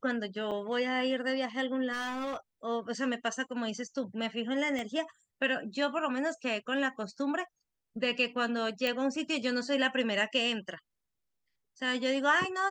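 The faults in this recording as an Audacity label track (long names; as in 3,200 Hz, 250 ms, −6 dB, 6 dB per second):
0.510000	0.520000	drop-out 5.3 ms
1.920000	2.370000	clipping −32 dBFS
4.790000	4.790000	click −24 dBFS
8.870000	8.870000	click −17 dBFS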